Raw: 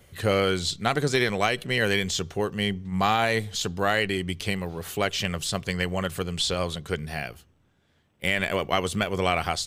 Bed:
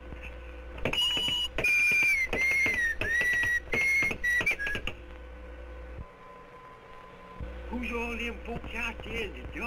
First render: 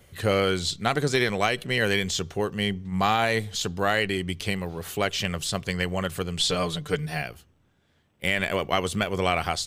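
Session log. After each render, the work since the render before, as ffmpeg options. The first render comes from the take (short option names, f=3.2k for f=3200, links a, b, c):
-filter_complex "[0:a]asettb=1/sr,asplit=3[a][b][c];[a]atrim=end=6.394[d];[b]atrim=start=6.39:end=7.22,asetpts=PTS-STARTPTS,afade=t=in:d=0.004:c=qsin,afade=t=out:st=0.826:d=0.004:c=qsin,aecho=1:1:6.7:0.77,atrim=end_sample=36603[e];[c]atrim=start=7.216[f];[d][e]acrossfade=d=0.004:c1=hsin:c2=qsin[g];[g][f]acrossfade=d=0.004:c1=qsin:c2=hsin"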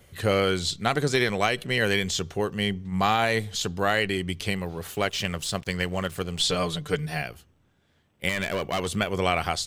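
-filter_complex "[0:a]asettb=1/sr,asplit=3[a][b][c];[a]atrim=end=4.874[d];[b]atrim=start=4.87:end=6.42,asetpts=PTS-STARTPTS,afade=t=in:d=0.004:c=qsin,afade=t=out:st=1.546:d=0.004:c=qsin,aeval=exprs='sgn(val(0))*max(abs(val(0))-0.00501,0)':c=same[e];[c]atrim=start=6.416[f];[d][e]acrossfade=d=0.004:c1=hsin:c2=qsin[g];[g][f]acrossfade=d=0.004:c1=qsin:c2=hsin,asettb=1/sr,asplit=3[h][i][j];[h]atrim=end=8.294[k];[i]atrim=start=8.29:end=8.87,asetpts=PTS-STARTPTS,afade=t=in:d=0.004:c=qsin,afade=t=out:st=0.576:d=0.004:c=qsin,asoftclip=type=hard:threshold=-22.5dB[l];[j]atrim=start=8.866[m];[k][l]acrossfade=d=0.004:c1=hsin:c2=qsin[n];[n][m]acrossfade=d=0.004:c1=qsin:c2=hsin"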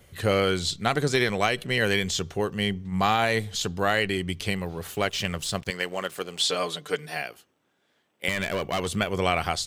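-filter_complex "[0:a]asettb=1/sr,asplit=3[a][b][c];[a]atrim=end=5.704[d];[b]atrim=start=5.7:end=8.28,asetpts=PTS-STARTPTS,afade=t=in:d=0.004:c=qsin,afade=t=out:st=2.576:d=0.004:c=qsin,highpass=310[e];[c]atrim=start=8.276[f];[d][e]acrossfade=d=0.004:c1=hsin:c2=qsin[g];[g][f]acrossfade=d=0.004:c1=qsin:c2=hsin"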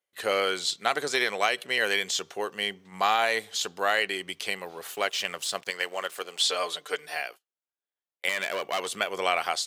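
-af "agate=range=-29dB:threshold=-41dB:ratio=16:detection=peak,highpass=520"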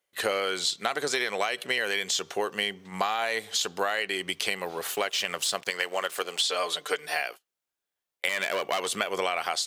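-filter_complex "[0:a]asplit=2[a][b];[b]alimiter=limit=-15.5dB:level=0:latency=1,volume=1dB[c];[a][c]amix=inputs=2:normalize=0,acompressor=threshold=-24dB:ratio=6"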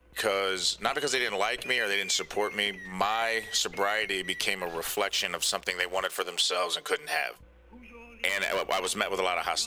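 -filter_complex "[1:a]volume=-15.5dB[a];[0:a][a]amix=inputs=2:normalize=0"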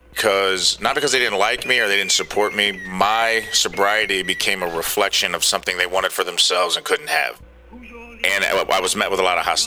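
-af "volume=10.5dB,alimiter=limit=-1dB:level=0:latency=1"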